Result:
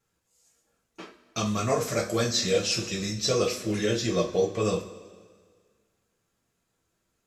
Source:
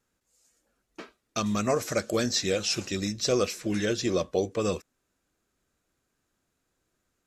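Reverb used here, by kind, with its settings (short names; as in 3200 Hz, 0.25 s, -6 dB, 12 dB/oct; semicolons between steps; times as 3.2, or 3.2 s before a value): two-slope reverb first 0.27 s, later 1.8 s, from -18 dB, DRR -2.5 dB; gain -3 dB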